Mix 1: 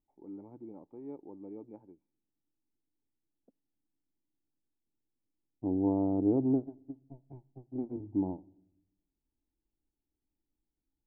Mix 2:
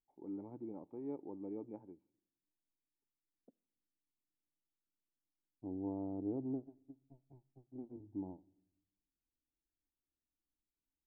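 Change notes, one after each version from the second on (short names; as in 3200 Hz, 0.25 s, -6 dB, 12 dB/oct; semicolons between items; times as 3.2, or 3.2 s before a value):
first voice: send +7.0 dB; second voice -12.0 dB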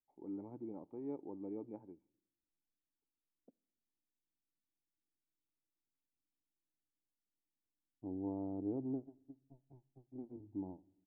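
second voice: entry +2.40 s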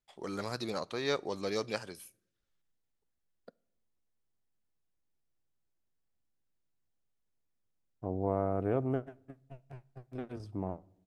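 master: remove vocal tract filter u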